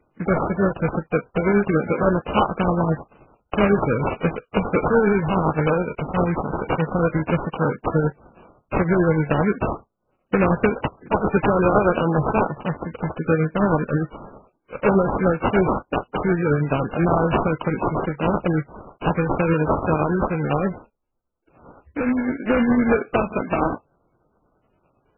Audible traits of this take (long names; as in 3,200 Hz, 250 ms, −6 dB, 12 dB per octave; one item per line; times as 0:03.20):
a buzz of ramps at a fixed pitch in blocks of 8 samples
tremolo triangle 9.7 Hz, depth 45%
aliases and images of a low sample rate 1,900 Hz, jitter 20%
MP3